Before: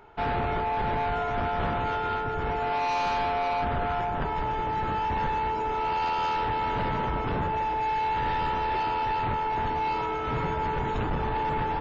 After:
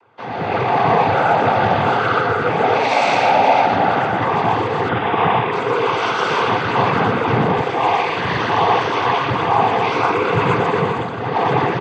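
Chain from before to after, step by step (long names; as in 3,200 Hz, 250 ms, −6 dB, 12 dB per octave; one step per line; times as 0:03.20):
0:10.73–0:11.42: duck −8 dB, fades 0.25 s
loudspeakers that aren't time-aligned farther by 41 metres −4 dB, 74 metres −10 dB
automatic gain control gain up to 14.5 dB
0:04.88–0:05.52: linear-phase brick-wall low-pass 3,200 Hz
cochlear-implant simulation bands 16
level −2 dB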